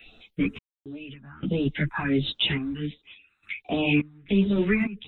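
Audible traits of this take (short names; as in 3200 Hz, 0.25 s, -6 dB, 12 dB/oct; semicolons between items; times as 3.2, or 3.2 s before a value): phasing stages 4, 1.4 Hz, lowest notch 480–2200 Hz; random-step tremolo, depth 100%; a shimmering, thickened sound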